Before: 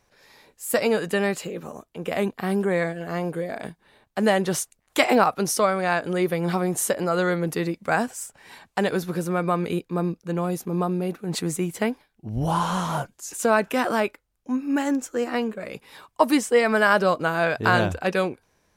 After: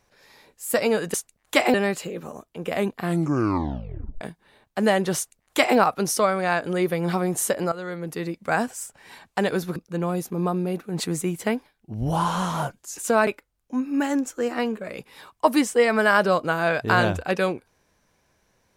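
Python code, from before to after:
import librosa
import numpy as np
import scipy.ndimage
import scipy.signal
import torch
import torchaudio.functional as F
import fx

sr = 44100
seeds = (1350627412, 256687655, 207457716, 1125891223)

y = fx.edit(x, sr, fx.tape_stop(start_s=2.39, length_s=1.22),
    fx.duplicate(start_s=4.57, length_s=0.6, to_s=1.14),
    fx.fade_in_from(start_s=7.12, length_s=0.9, floor_db=-14.5),
    fx.cut(start_s=9.16, length_s=0.95),
    fx.cut(start_s=13.62, length_s=0.41), tone=tone)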